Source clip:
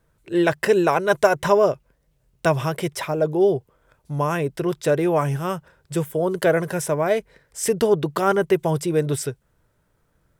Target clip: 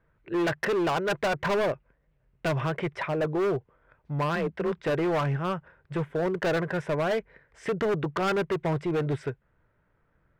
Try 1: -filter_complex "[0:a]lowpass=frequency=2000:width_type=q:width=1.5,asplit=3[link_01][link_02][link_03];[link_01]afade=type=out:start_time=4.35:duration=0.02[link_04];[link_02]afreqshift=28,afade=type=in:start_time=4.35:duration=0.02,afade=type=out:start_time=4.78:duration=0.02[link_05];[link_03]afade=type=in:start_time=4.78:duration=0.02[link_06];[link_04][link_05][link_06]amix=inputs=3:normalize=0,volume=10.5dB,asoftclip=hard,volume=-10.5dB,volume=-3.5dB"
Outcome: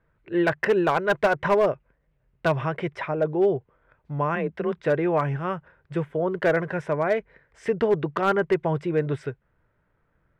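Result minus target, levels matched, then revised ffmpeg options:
gain into a clipping stage and back: distortion −11 dB
-filter_complex "[0:a]lowpass=frequency=2000:width_type=q:width=1.5,asplit=3[link_01][link_02][link_03];[link_01]afade=type=out:start_time=4.35:duration=0.02[link_04];[link_02]afreqshift=28,afade=type=in:start_time=4.35:duration=0.02,afade=type=out:start_time=4.78:duration=0.02[link_05];[link_03]afade=type=in:start_time=4.78:duration=0.02[link_06];[link_04][link_05][link_06]amix=inputs=3:normalize=0,volume=19.5dB,asoftclip=hard,volume=-19.5dB,volume=-3.5dB"

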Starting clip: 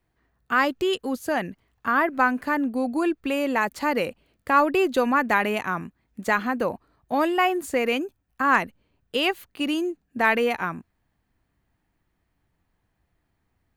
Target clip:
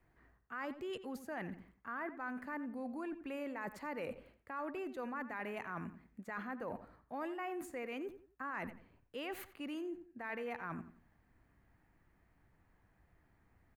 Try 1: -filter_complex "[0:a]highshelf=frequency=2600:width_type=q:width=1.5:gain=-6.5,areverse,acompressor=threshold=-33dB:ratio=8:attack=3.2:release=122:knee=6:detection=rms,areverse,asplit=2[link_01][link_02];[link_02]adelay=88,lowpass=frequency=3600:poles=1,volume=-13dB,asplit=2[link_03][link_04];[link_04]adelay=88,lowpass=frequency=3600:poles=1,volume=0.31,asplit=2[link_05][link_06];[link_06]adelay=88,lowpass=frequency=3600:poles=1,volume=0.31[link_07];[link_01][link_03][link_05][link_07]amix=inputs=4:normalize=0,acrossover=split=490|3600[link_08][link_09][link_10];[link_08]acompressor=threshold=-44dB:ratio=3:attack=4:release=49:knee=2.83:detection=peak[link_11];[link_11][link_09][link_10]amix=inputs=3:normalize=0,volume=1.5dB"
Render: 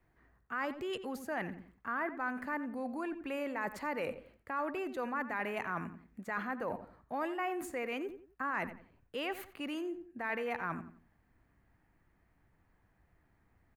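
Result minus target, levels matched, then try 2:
downward compressor: peak gain reduction −6.5 dB
-filter_complex "[0:a]highshelf=frequency=2600:width_type=q:width=1.5:gain=-6.5,areverse,acompressor=threshold=-40.5dB:ratio=8:attack=3.2:release=122:knee=6:detection=rms,areverse,asplit=2[link_01][link_02];[link_02]adelay=88,lowpass=frequency=3600:poles=1,volume=-13dB,asplit=2[link_03][link_04];[link_04]adelay=88,lowpass=frequency=3600:poles=1,volume=0.31,asplit=2[link_05][link_06];[link_06]adelay=88,lowpass=frequency=3600:poles=1,volume=0.31[link_07];[link_01][link_03][link_05][link_07]amix=inputs=4:normalize=0,acrossover=split=490|3600[link_08][link_09][link_10];[link_08]acompressor=threshold=-44dB:ratio=3:attack=4:release=49:knee=2.83:detection=peak[link_11];[link_11][link_09][link_10]amix=inputs=3:normalize=0,volume=1.5dB"

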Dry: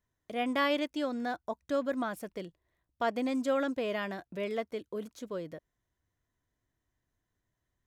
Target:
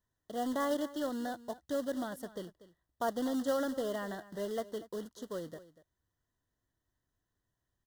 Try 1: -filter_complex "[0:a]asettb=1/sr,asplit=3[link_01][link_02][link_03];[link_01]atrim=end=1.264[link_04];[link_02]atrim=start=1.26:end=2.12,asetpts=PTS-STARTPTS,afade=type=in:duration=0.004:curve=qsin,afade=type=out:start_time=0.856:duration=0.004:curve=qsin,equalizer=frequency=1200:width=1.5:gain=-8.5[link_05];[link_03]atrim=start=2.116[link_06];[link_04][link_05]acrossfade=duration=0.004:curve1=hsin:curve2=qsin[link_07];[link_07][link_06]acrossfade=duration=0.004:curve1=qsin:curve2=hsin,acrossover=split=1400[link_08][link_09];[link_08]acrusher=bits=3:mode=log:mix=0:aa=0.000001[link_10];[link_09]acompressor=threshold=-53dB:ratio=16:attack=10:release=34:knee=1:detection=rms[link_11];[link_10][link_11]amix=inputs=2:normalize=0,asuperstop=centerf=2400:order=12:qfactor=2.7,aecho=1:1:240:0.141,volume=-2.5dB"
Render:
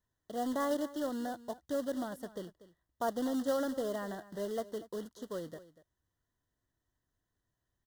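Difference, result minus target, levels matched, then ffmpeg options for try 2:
downward compressor: peak gain reduction +6.5 dB
-filter_complex "[0:a]asettb=1/sr,asplit=3[link_01][link_02][link_03];[link_01]atrim=end=1.264[link_04];[link_02]atrim=start=1.26:end=2.12,asetpts=PTS-STARTPTS,afade=type=in:duration=0.004:curve=qsin,afade=type=out:start_time=0.856:duration=0.004:curve=qsin,equalizer=frequency=1200:width=1.5:gain=-8.5[link_05];[link_03]atrim=start=2.116[link_06];[link_04][link_05]acrossfade=duration=0.004:curve1=hsin:curve2=qsin[link_07];[link_07][link_06]acrossfade=duration=0.004:curve1=qsin:curve2=hsin,acrossover=split=1400[link_08][link_09];[link_08]acrusher=bits=3:mode=log:mix=0:aa=0.000001[link_10];[link_09]acompressor=threshold=-46dB:ratio=16:attack=10:release=34:knee=1:detection=rms[link_11];[link_10][link_11]amix=inputs=2:normalize=0,asuperstop=centerf=2400:order=12:qfactor=2.7,aecho=1:1:240:0.141,volume=-2.5dB"

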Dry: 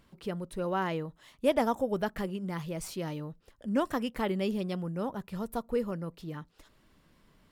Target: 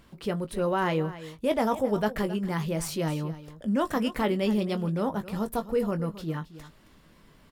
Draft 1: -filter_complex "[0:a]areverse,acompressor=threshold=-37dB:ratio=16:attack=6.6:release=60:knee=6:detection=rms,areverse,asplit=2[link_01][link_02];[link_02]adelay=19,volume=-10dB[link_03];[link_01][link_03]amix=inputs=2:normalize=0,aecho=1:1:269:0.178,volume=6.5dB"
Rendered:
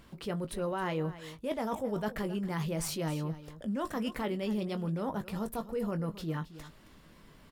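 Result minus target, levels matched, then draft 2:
downward compressor: peak gain reduction +9.5 dB
-filter_complex "[0:a]areverse,acompressor=threshold=-27dB:ratio=16:attack=6.6:release=60:knee=6:detection=rms,areverse,asplit=2[link_01][link_02];[link_02]adelay=19,volume=-10dB[link_03];[link_01][link_03]amix=inputs=2:normalize=0,aecho=1:1:269:0.178,volume=6.5dB"

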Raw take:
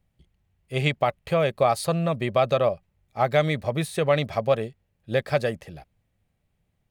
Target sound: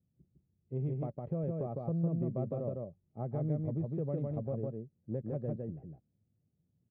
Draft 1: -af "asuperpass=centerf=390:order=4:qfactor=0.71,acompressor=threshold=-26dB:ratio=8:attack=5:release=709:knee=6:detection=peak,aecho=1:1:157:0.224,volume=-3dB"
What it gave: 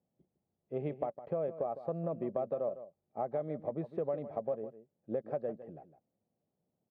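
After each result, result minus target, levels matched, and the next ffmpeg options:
echo-to-direct −10.5 dB; 500 Hz band +5.0 dB
-af "asuperpass=centerf=390:order=4:qfactor=0.71,acompressor=threshold=-26dB:ratio=8:attack=5:release=709:knee=6:detection=peak,aecho=1:1:157:0.75,volume=-3dB"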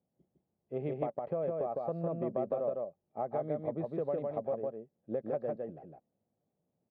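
500 Hz band +5.0 dB
-af "asuperpass=centerf=190:order=4:qfactor=0.71,acompressor=threshold=-26dB:ratio=8:attack=5:release=709:knee=6:detection=peak,aecho=1:1:157:0.75,volume=-3dB"

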